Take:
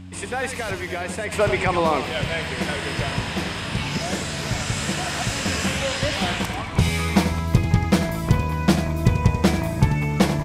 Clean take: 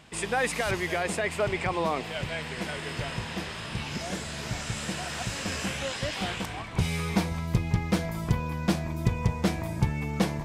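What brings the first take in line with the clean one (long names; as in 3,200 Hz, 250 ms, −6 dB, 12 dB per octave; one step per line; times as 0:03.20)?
hum removal 92 Hz, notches 3
echo removal 88 ms −10 dB
level correction −7.5 dB, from 0:01.32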